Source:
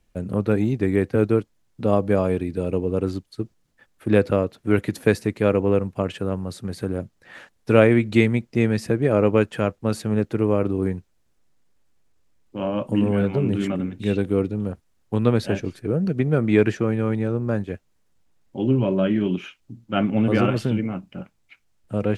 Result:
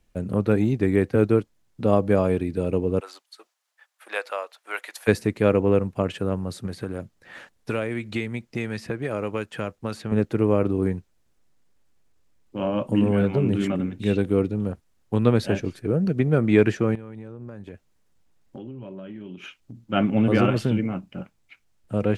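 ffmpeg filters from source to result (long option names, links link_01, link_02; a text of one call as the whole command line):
ffmpeg -i in.wav -filter_complex "[0:a]asplit=3[link_01][link_02][link_03];[link_01]afade=type=out:start_time=2.99:duration=0.02[link_04];[link_02]highpass=frequency=730:width=0.5412,highpass=frequency=730:width=1.3066,afade=type=in:start_time=2.99:duration=0.02,afade=type=out:start_time=5.07:duration=0.02[link_05];[link_03]afade=type=in:start_time=5.07:duration=0.02[link_06];[link_04][link_05][link_06]amix=inputs=3:normalize=0,asettb=1/sr,asplit=3[link_07][link_08][link_09];[link_07]atrim=end=6.664[link_10];[link_08]atrim=start=6.66:end=10.12,asetpts=PTS-STARTPTS,afade=type=in:duration=0.004:curve=qsin,afade=type=out:start_time=3.456:duration=0.004:curve=qsin,acrossover=split=810|4400[link_11][link_12][link_13];[link_11]acompressor=threshold=-28dB:ratio=4[link_14];[link_12]acompressor=threshold=-33dB:ratio=4[link_15];[link_13]acompressor=threshold=-50dB:ratio=4[link_16];[link_14][link_15][link_16]amix=inputs=3:normalize=0[link_17];[link_09]atrim=start=10.116[link_18];[link_10][link_17]acrossfade=duration=0.004:curve1=hsin:curve2=qsin[link_19];[link_19][link_18]acrossfade=duration=0.004:curve1=qsin:curve2=hsin,asettb=1/sr,asplit=3[link_20][link_21][link_22];[link_20]atrim=end=16.954[link_23];[link_21]atrim=start=16.95:end=19.86,asetpts=PTS-STARTPTS,afade=type=in:duration=0.004:curve=qsin,afade=type=out:start_time=2.906:duration=0.004:curve=qsin,acompressor=threshold=-34dB:ratio=12:attack=3.2:release=140:knee=1:detection=peak[link_24];[link_22]atrim=start=19.856[link_25];[link_23][link_24]acrossfade=duration=0.004:curve1=hsin:curve2=qsin[link_26];[link_26][link_25]acrossfade=duration=0.004:curve1=qsin:curve2=hsin" out.wav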